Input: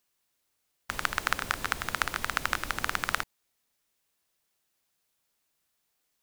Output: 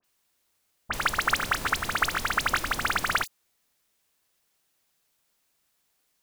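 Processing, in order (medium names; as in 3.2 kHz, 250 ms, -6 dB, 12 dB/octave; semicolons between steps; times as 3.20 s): phase dispersion highs, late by 43 ms, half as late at 2.7 kHz; trim +4.5 dB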